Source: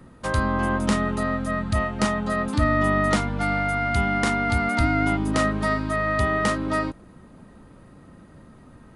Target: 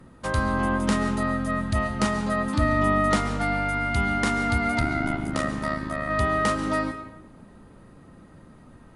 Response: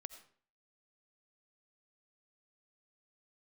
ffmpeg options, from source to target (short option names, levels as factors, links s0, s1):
-filter_complex "[0:a]asplit=3[s0][s1][s2];[s0]afade=t=out:st=4.79:d=0.02[s3];[s1]tremolo=f=73:d=0.857,afade=t=in:st=4.79:d=0.02,afade=t=out:st=6.09:d=0.02[s4];[s2]afade=t=in:st=6.09:d=0.02[s5];[s3][s4][s5]amix=inputs=3:normalize=0[s6];[1:a]atrim=start_sample=2205,asetrate=27783,aresample=44100[s7];[s6][s7]afir=irnorm=-1:irlink=0,volume=1.19"